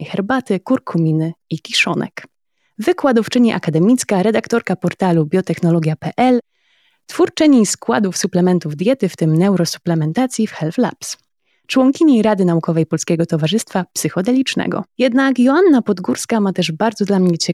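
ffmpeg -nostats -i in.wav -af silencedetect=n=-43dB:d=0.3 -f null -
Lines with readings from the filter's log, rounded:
silence_start: 2.26
silence_end: 2.78 | silence_duration: 0.52
silence_start: 6.40
silence_end: 7.09 | silence_duration: 0.68
silence_start: 11.19
silence_end: 11.69 | silence_duration: 0.50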